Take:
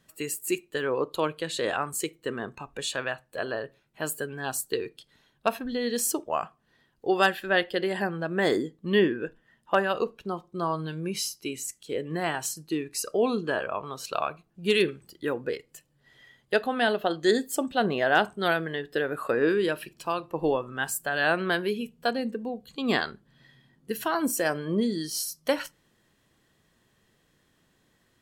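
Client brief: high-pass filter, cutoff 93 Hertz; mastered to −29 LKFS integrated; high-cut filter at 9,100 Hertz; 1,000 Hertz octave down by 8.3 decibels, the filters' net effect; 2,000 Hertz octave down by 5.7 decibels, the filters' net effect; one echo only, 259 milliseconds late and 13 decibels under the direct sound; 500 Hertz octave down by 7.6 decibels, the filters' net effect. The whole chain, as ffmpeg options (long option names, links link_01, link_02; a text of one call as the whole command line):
ffmpeg -i in.wav -af "highpass=93,lowpass=9100,equalizer=frequency=500:width_type=o:gain=-8,equalizer=frequency=1000:width_type=o:gain=-7.5,equalizer=frequency=2000:width_type=o:gain=-4,aecho=1:1:259:0.224,volume=4.5dB" out.wav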